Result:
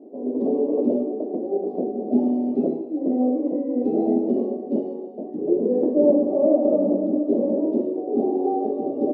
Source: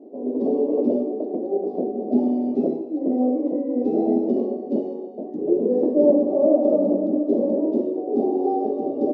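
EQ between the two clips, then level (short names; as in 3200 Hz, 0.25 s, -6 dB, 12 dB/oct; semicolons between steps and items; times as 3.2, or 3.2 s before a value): tone controls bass +2 dB, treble -10 dB; -1.0 dB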